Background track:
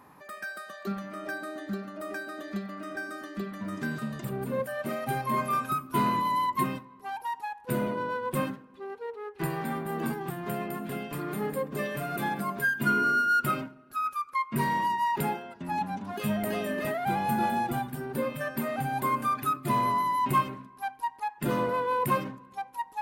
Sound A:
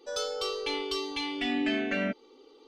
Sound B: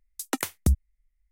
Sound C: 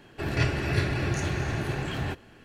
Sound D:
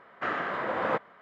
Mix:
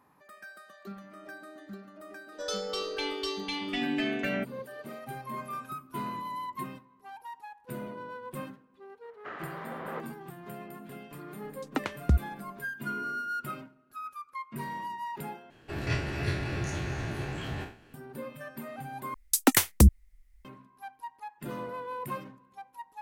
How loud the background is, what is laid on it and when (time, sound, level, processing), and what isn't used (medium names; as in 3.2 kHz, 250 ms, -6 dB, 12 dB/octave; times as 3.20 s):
background track -10 dB
2.32 s: add A -1.5 dB
9.03 s: add D -11.5 dB
11.43 s: add B -1.5 dB + low-pass 2.9 kHz
15.50 s: replace with C -6.5 dB + spectral sustain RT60 0.43 s
19.14 s: replace with B -0.5 dB + sine folder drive 8 dB, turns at -10.5 dBFS